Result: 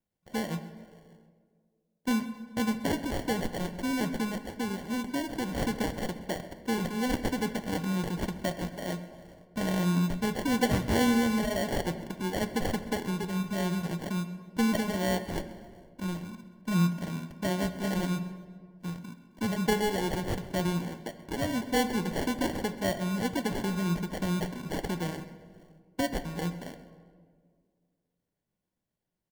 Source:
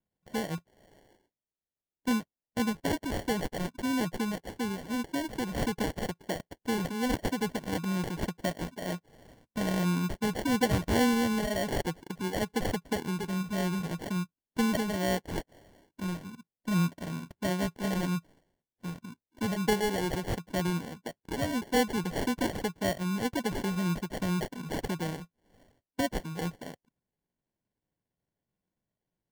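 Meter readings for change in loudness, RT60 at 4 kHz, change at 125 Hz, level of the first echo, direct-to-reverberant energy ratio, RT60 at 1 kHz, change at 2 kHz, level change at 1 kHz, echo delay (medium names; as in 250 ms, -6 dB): +1.0 dB, 1.0 s, +1.0 dB, -18.0 dB, 9.5 dB, 1.6 s, +0.5 dB, +0.5 dB, 132 ms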